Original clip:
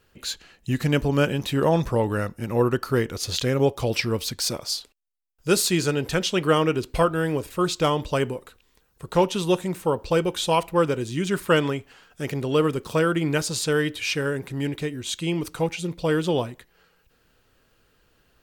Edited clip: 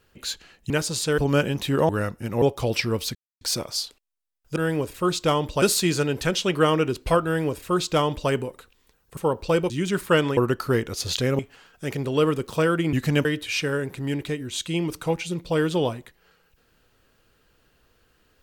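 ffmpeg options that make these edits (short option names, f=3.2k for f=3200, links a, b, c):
-filter_complex "[0:a]asplit=14[a][b][c][d][e][f][g][h][i][j][k][l][m][n];[a]atrim=end=0.702[o];[b]atrim=start=13.298:end=13.782[p];[c]atrim=start=1.018:end=1.732[q];[d]atrim=start=2.068:end=2.602[r];[e]atrim=start=3.618:end=4.35,asetpts=PTS-STARTPTS,afade=t=out:st=0.728:d=0.004:c=hsin,apad=pad_dur=0.26[s];[f]atrim=start=4.35:end=5.502,asetpts=PTS-STARTPTS,afade=t=in:d=0.004:c=hsin[t];[g]atrim=start=7.118:end=8.182[u];[h]atrim=start=5.498:end=9.052[v];[i]atrim=start=9.788:end=10.322[w];[j]atrim=start=11.088:end=11.762[x];[k]atrim=start=2.598:end=3.622[y];[l]atrim=start=11.758:end=13.302[z];[m]atrim=start=0.698:end=1.022[aa];[n]atrim=start=13.778[ab];[o][p]acrossfade=d=0.004:c1=hsin:c2=hsin[ac];[ac][q]acrossfade=d=0.004:c1=hsin:c2=hsin[ad];[ad][r]acrossfade=d=0.004:c1=hsin:c2=hsin[ae];[s][t]concat=n=2:v=0:a=1[af];[ae][af]acrossfade=d=0.004:c1=hsin:c2=hsin[ag];[ag][u]acrossfade=d=0.004:c1=hsin:c2=hsin[ah];[ah][v]acrossfade=d=0.004:c1=hsin:c2=hsin[ai];[ai][w]acrossfade=d=0.004:c1=hsin:c2=hsin[aj];[aj][x]acrossfade=d=0.004:c1=hsin:c2=hsin[ak];[ak][y]acrossfade=d=0.004:c1=hsin:c2=hsin[al];[al][z]acrossfade=d=0.004:c1=hsin:c2=hsin[am];[am][aa]acrossfade=d=0.004:c1=hsin:c2=hsin[an];[an][ab]acrossfade=d=0.004:c1=hsin:c2=hsin"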